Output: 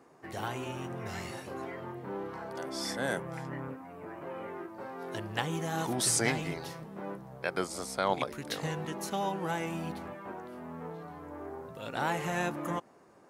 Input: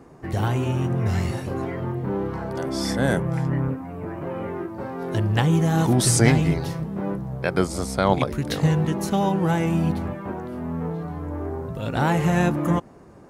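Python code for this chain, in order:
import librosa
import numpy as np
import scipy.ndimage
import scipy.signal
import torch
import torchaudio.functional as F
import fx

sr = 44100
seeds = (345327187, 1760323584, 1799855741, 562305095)

y = fx.highpass(x, sr, hz=600.0, slope=6)
y = y * 10.0 ** (-6.0 / 20.0)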